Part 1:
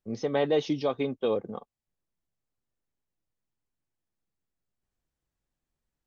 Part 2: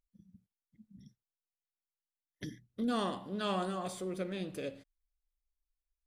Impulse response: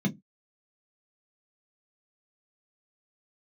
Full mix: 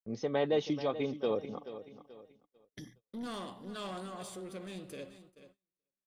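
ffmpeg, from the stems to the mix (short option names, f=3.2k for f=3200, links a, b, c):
-filter_complex "[0:a]volume=-4.5dB,asplit=2[a][b];[b]volume=-13dB[c];[1:a]highshelf=f=3.2k:g=4.5,asoftclip=type=tanh:threshold=-31dB,adelay=350,volume=-4.5dB,asplit=2[d][e];[e]volume=-13.5dB[f];[c][f]amix=inputs=2:normalize=0,aecho=0:1:432|864|1296|1728|2160:1|0.37|0.137|0.0507|0.0187[g];[a][d][g]amix=inputs=3:normalize=0,agate=range=-30dB:threshold=-59dB:ratio=16:detection=peak"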